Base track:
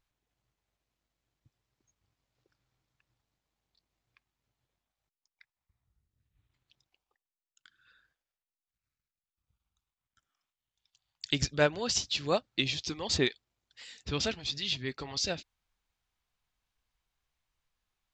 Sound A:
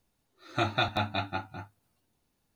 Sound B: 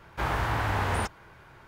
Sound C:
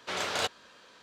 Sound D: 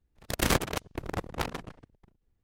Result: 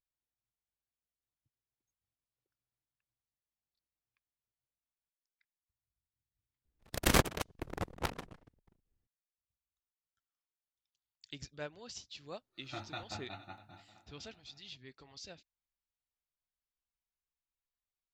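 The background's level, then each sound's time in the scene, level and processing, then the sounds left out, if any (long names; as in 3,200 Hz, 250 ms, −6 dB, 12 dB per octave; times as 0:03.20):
base track −17.5 dB
0:06.64: overwrite with D −0.5 dB + expander for the loud parts, over −39 dBFS
0:12.15: mix in A −16 dB + feedback echo with a long and a short gap by turns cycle 768 ms, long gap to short 1.5 to 1, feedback 30%, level −16 dB
not used: B, C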